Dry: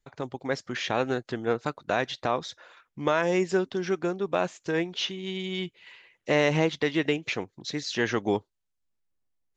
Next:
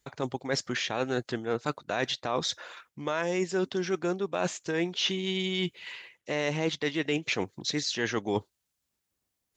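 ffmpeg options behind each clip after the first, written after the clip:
-af "highpass=48,highshelf=f=3.8k:g=6.5,areverse,acompressor=threshold=-32dB:ratio=6,areverse,volume=6dB"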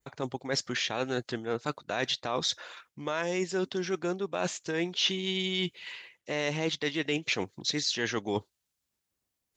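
-af "adynamicequalizer=threshold=0.01:dfrequency=4300:dqfactor=0.75:tfrequency=4300:tqfactor=0.75:attack=5:release=100:ratio=0.375:range=2:mode=boostabove:tftype=bell,volume=-2dB"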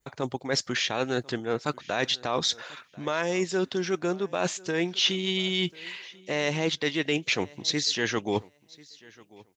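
-af "aecho=1:1:1041|2082:0.0668|0.012,volume=3.5dB"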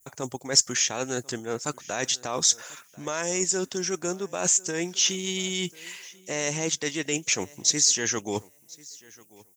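-af "aexciter=amount=11.2:drive=6:freq=6k,volume=-2.5dB"

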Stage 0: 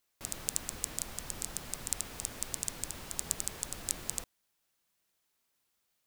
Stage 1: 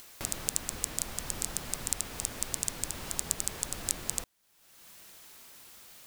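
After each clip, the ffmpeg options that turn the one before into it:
-filter_complex "[0:a]asplit=2[a][b];[b]alimiter=limit=-13dB:level=0:latency=1:release=444,volume=-2dB[c];[a][c]amix=inputs=2:normalize=0,acompressor=mode=upward:threshold=-34dB:ratio=2.5"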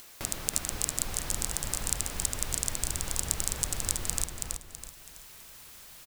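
-af "asubboost=boost=2.5:cutoff=140,aecho=1:1:327|654|981|1308|1635:0.668|0.241|0.0866|0.0312|0.0112,volume=1dB"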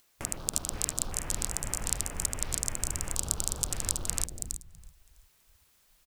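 -af "afwtdn=0.00794"

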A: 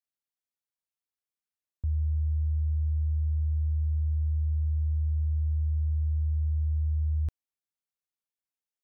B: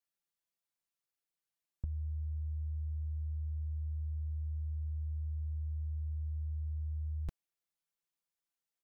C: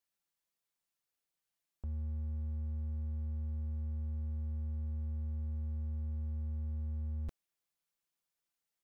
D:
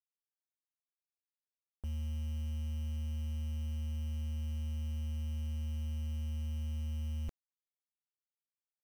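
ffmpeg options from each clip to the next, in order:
-af "aecho=1:1:5.9:0.75,volume=-1.5dB"
-af "asoftclip=type=hard:threshold=-37.5dB,volume=2dB"
-af "acrusher=bits=8:mix=0:aa=0.000001,volume=1dB"

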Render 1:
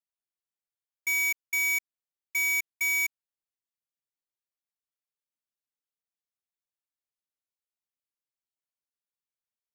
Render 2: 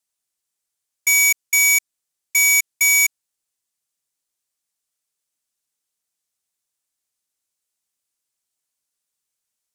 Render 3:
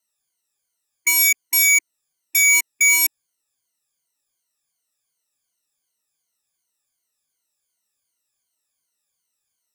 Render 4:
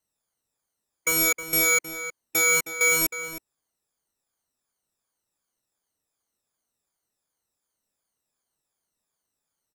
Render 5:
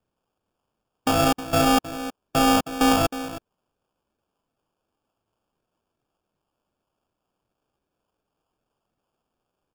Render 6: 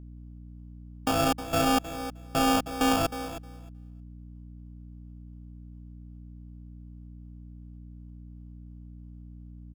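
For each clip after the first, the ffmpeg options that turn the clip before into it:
-af "equalizer=f=8.2k:t=o:w=1.6:g=11,volume=7.5dB"
-af "afftfilt=real='re*pow(10,17/40*sin(2*PI*(1.9*log(max(b,1)*sr/1024/100)/log(2)-(-2.7)*(pts-256)/sr)))':imag='im*pow(10,17/40*sin(2*PI*(1.9*log(max(b,1)*sr/1024/100)/log(2)-(-2.7)*(pts-256)/sr)))':win_size=1024:overlap=0.75,alimiter=limit=-8dB:level=0:latency=1:release=19"
-filter_complex "[0:a]asplit=2[a][b];[b]acrusher=samples=16:mix=1:aa=0.000001,volume=-8dB[c];[a][c]amix=inputs=2:normalize=0,asplit=2[d][e];[e]adelay=314.9,volume=-10dB,highshelf=f=4k:g=-7.08[f];[d][f]amix=inputs=2:normalize=0,volume=-6.5dB"
-af "acrusher=samples=22:mix=1:aa=0.000001,volume=2.5dB"
-af "aeval=exprs='val(0)+0.0126*(sin(2*PI*60*n/s)+sin(2*PI*2*60*n/s)/2+sin(2*PI*3*60*n/s)/3+sin(2*PI*4*60*n/s)/4+sin(2*PI*5*60*n/s)/5)':c=same,aecho=1:1:311|622:0.126|0.0189,volume=-5dB"

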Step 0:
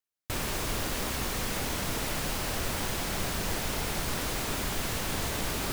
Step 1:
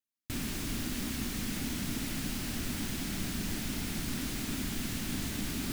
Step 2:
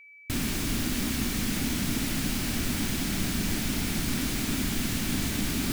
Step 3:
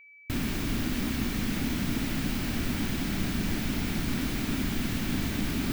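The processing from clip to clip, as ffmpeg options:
-af "equalizer=f=250:t=o:w=1:g=12,equalizer=f=500:t=o:w=1:g=-11,equalizer=f=1k:t=o:w=1:g=-7,volume=-4.5dB"
-af "aeval=exprs='val(0)+0.00178*sin(2*PI*2300*n/s)':c=same,volume=6.5dB"
-af "equalizer=f=9k:w=0.48:g=-9"

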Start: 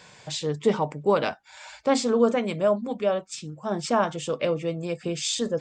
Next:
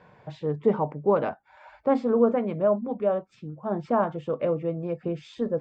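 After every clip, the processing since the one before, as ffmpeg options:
-af "lowpass=1.2k"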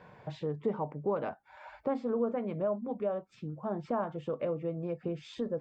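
-af "acompressor=threshold=-36dB:ratio=2"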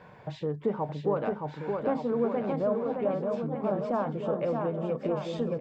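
-af "aecho=1:1:620|1178|1680|2132|2539:0.631|0.398|0.251|0.158|0.1,volume=3dB"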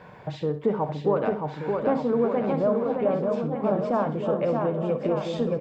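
-af "aecho=1:1:63|126|189:0.251|0.0703|0.0197,volume=4.5dB"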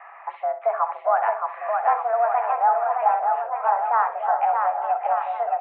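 -af "highpass=f=440:t=q:w=0.5412,highpass=f=440:t=q:w=1.307,lowpass=f=2.1k:t=q:w=0.5176,lowpass=f=2.1k:t=q:w=0.7071,lowpass=f=2.1k:t=q:w=1.932,afreqshift=230,volume=5.5dB"

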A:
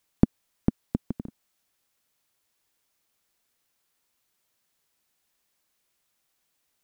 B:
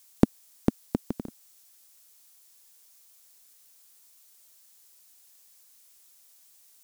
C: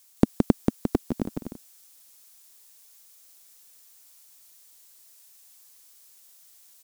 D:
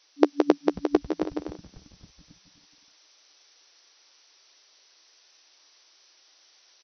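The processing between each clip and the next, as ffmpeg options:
-af "bass=f=250:g=-10,treble=f=4k:g=13,volume=5.5dB"
-af "aecho=1:1:169.1|268.2:0.631|0.891"
-filter_complex "[0:a]asplit=2[a][b];[b]adelay=13,volume=-11dB[c];[a][c]amix=inputs=2:normalize=0,afftfilt=real='re*between(b*sr/4096,280,6100)':imag='im*between(b*sr/4096,280,6100)':win_size=4096:overlap=0.75,asplit=6[d][e][f][g][h][i];[e]adelay=272,afreqshift=-120,volume=-21.5dB[j];[f]adelay=544,afreqshift=-240,volume=-25.4dB[k];[g]adelay=816,afreqshift=-360,volume=-29.3dB[l];[h]adelay=1088,afreqshift=-480,volume=-33.1dB[m];[i]adelay=1360,afreqshift=-600,volume=-37dB[n];[d][j][k][l][m][n]amix=inputs=6:normalize=0,volume=6dB"

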